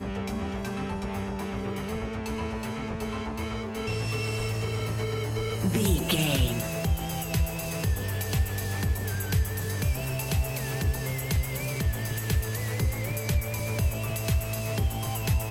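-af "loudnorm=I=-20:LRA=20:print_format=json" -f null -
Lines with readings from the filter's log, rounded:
"input_i" : "-29.3",
"input_tp" : "-10.7",
"input_lra" : "3.9",
"input_thresh" : "-39.3",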